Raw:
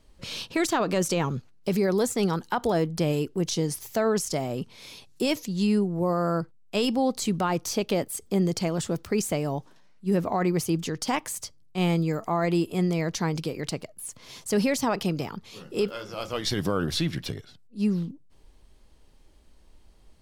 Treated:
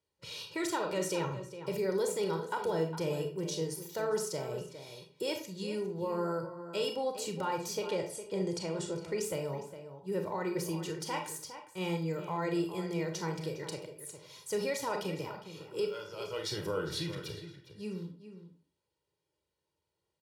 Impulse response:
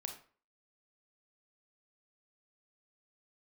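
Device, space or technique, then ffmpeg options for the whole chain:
microphone above a desk: -filter_complex "[0:a]highpass=frequency=100:width=0.5412,highpass=frequency=100:width=1.3066,asettb=1/sr,asplit=3[link_01][link_02][link_03];[link_01]atrim=end=7.874[link_04];[link_02]atrim=start=7.87:end=9.21,asetpts=PTS-STARTPTS,afade=type=in:duration=0.004:curve=qsin,afade=type=out:start_time=1.336:duration=0.004:curve=qsin,lowpass=frequency=10000:width=0.5412,lowpass=frequency=10000:width=1.3066[link_05];[link_03]atrim=start=9.206[link_06];[link_04][link_05]acrossfade=duration=0.004:curve1=hsin:curve2=qsin[link_07];[link_07][link_06]acrossfade=duration=0.004:curve1=qsin:curve2=hsin,agate=range=-12dB:threshold=-52dB:ratio=16:detection=peak,aecho=1:1:2.1:0.76[link_08];[1:a]atrim=start_sample=2205[link_09];[link_08][link_09]afir=irnorm=-1:irlink=0,asplit=2[link_10][link_11];[link_11]adelay=408.2,volume=-11dB,highshelf=frequency=4000:gain=-9.18[link_12];[link_10][link_12]amix=inputs=2:normalize=0,volume=-7.5dB"

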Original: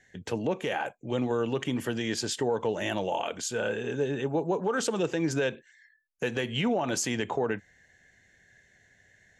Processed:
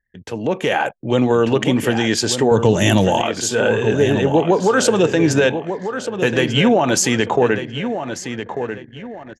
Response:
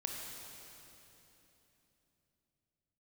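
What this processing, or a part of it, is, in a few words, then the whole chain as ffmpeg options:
voice memo with heavy noise removal: -filter_complex "[0:a]asettb=1/sr,asplit=3[link_01][link_02][link_03];[link_01]atrim=end=2.514[link_04];[link_02]atrim=start=2.51:end=3.22,asetpts=PTS-STARTPTS,afade=type=in:duration=0.004:curve=qsin,afade=type=out:start_time=0.706:duration=0.004:curve=qsin,bass=frequency=250:gain=13,treble=frequency=4000:gain=12[link_05];[link_03]atrim=start=3.216[link_06];[link_04][link_05]acrossfade=duration=0.004:curve1=hsin:curve2=qsin[link_07];[link_07][link_06]acrossfade=duration=0.004:curve1=qsin:curve2=hsin,asplit=2[link_08][link_09];[link_09]adelay=1193,lowpass=frequency=4200:poles=1,volume=-9dB,asplit=2[link_10][link_11];[link_11]adelay=1193,lowpass=frequency=4200:poles=1,volume=0.33,asplit=2[link_12][link_13];[link_13]adelay=1193,lowpass=frequency=4200:poles=1,volume=0.33,asplit=2[link_14][link_15];[link_15]adelay=1193,lowpass=frequency=4200:poles=1,volume=0.33[link_16];[link_08][link_10][link_12][link_14][link_16]amix=inputs=5:normalize=0,anlmdn=0.00398,dynaudnorm=framelen=340:gausssize=3:maxgain=11dB,volume=2dB"

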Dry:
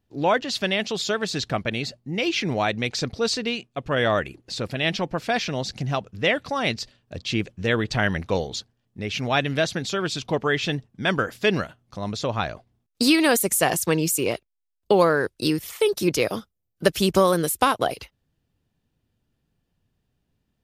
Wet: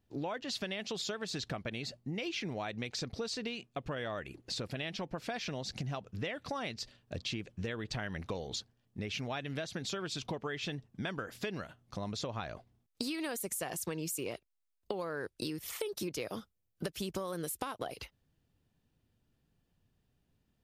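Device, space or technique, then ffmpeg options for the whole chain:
serial compression, peaks first: -af "acompressor=threshold=-28dB:ratio=4,acompressor=threshold=-34dB:ratio=2.5,volume=-2.5dB"

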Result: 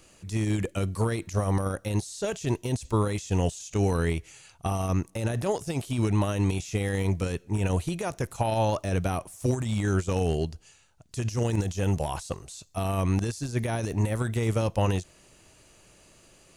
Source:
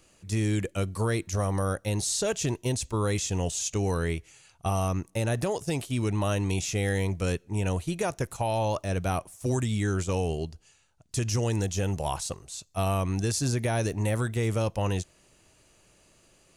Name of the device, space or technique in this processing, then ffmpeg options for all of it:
de-esser from a sidechain: -filter_complex "[0:a]asplit=2[link_01][link_02];[link_02]highpass=4700,apad=whole_len=730682[link_03];[link_01][link_03]sidechaincompress=threshold=-45dB:ratio=5:attack=1.1:release=33,volume=4.5dB"

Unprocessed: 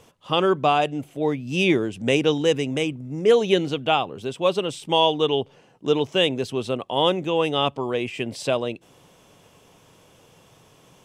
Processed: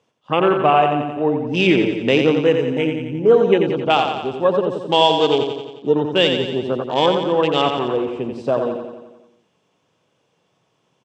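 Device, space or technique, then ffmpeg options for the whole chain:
over-cleaned archive recording: -af "highpass=130,lowpass=5900,afwtdn=0.0355,aecho=1:1:88|176|264|352|440|528|616|704:0.501|0.296|0.174|0.103|0.0607|0.0358|0.0211|0.0125,volume=4dB"

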